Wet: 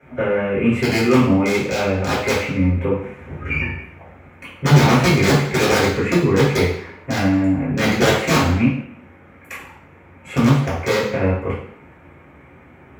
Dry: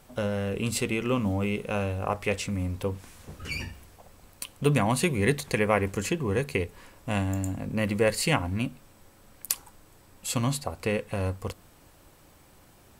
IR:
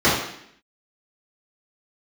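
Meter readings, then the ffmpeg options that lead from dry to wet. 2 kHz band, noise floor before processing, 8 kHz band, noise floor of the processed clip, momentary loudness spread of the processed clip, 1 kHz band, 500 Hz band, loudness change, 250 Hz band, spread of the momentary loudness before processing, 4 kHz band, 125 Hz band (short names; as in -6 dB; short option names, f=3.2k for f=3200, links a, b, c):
+11.0 dB, -56 dBFS, +4.0 dB, -46 dBFS, 13 LU, +10.5 dB, +9.5 dB, +10.5 dB, +12.0 dB, 13 LU, +10.5 dB, +11.0 dB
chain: -filter_complex "[0:a]highshelf=f=3.2k:t=q:w=3:g=-13,aeval=exprs='(mod(6.68*val(0)+1,2)-1)/6.68':c=same[a];[1:a]atrim=start_sample=2205,asetrate=48510,aresample=44100[b];[a][b]afir=irnorm=-1:irlink=0,volume=-13dB"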